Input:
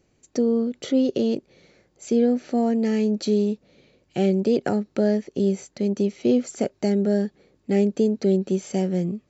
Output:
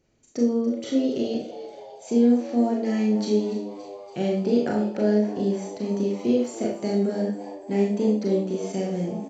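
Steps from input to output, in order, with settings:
downsampling to 16,000 Hz
echo with shifted repeats 285 ms, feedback 63%, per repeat +94 Hz, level −15 dB
four-comb reverb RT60 0.44 s, combs from 26 ms, DRR −1.5 dB
0:06.16–0:06.78: surface crackle 160 per second −45 dBFS
level −5.5 dB

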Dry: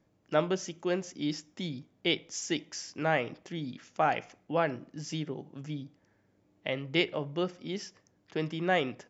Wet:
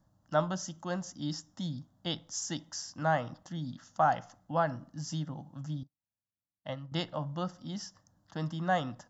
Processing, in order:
low-shelf EQ 110 Hz +5.5 dB
phaser with its sweep stopped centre 980 Hz, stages 4
0:05.83–0:06.92: expander for the loud parts 2.5 to 1, over −59 dBFS
level +2.5 dB

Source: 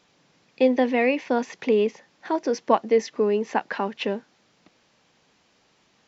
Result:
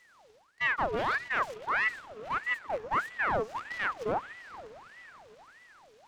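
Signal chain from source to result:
reversed playback
downward compressor 6 to 1, threshold −31 dBFS, peak gain reduction 17 dB
reversed playback
low-shelf EQ 180 Hz +9 dB
on a send: feedback delay with all-pass diffusion 481 ms, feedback 57%, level −15.5 dB
on the sum: full-wave rectification
harmonic and percussive parts rebalanced percussive −15 dB
ring modulator whose carrier an LFO sweeps 1,200 Hz, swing 65%, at 1.6 Hz
level +5 dB

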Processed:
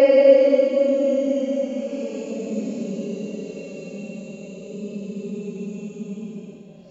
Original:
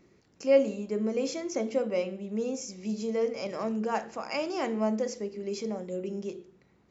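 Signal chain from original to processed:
extreme stretch with random phases 21×, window 0.05 s, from 0:00.55
hum removal 59.64 Hz, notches 28
level +3.5 dB

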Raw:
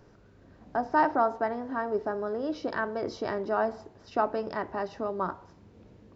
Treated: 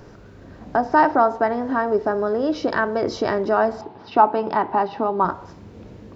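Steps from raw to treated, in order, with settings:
in parallel at +1.5 dB: downward compressor, threshold −34 dBFS, peak gain reduction 15 dB
0:03.81–0:05.25: on the sum: loudspeaker in its box 140–4,100 Hz, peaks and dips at 560 Hz −6 dB, 860 Hz +9 dB, 1,800 Hz −5 dB
level +6 dB

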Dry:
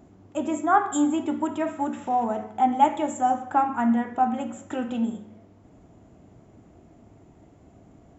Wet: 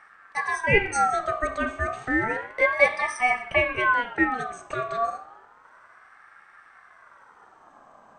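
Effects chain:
ring modulator whose carrier an LFO sweeps 1,200 Hz, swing 25%, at 0.31 Hz
level +2.5 dB

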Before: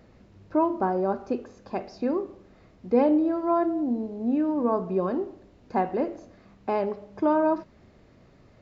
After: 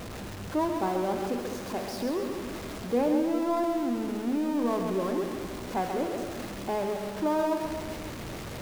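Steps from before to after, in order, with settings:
converter with a step at zero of −27.5 dBFS
echo with a time of its own for lows and highs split 420 Hz, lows 205 ms, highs 134 ms, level −6 dB
level −6.5 dB

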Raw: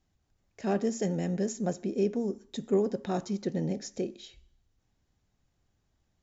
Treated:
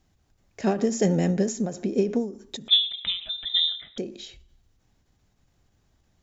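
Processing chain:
0:02.68–0:03.98: voice inversion scrambler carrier 3,800 Hz
every ending faded ahead of time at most 120 dB per second
level +8.5 dB

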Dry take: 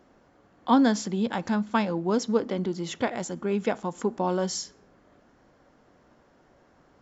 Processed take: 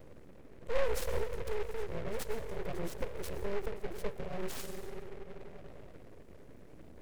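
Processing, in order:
0:00.93–0:02.68: spectral tilt +2 dB per octave
convolution reverb RT60 3.7 s, pre-delay 70 ms, DRR 9.5 dB
downward compressor 2 to 1, threshold −50 dBFS, peak gain reduction 18 dB
inverse Chebyshev band-stop filter 550–3,400 Hz, stop band 40 dB
high-shelf EQ 4,700 Hz −9 dB
mains-hum notches 60/120/180/240/300 Hz
full-wave rectification
short delay modulated by noise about 1,300 Hz, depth 0.087 ms
level +13.5 dB

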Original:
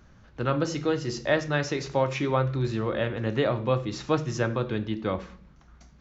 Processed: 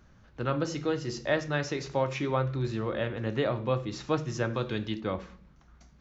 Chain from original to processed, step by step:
0:04.53–0:04.99: high-shelf EQ 3,500 Hz → 2,400 Hz +11 dB
level −3.5 dB

